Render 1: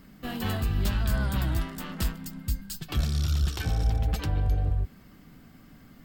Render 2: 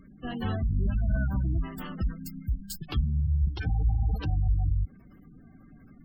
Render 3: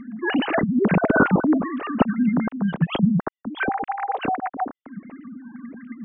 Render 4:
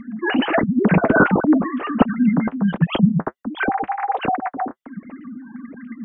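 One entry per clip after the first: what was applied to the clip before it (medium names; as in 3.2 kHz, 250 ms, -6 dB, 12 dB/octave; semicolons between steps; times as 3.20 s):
spectral gate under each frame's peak -20 dB strong
formants replaced by sine waves; trim +5 dB
flange 1.4 Hz, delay 1.2 ms, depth 7.8 ms, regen -47%; trim +7 dB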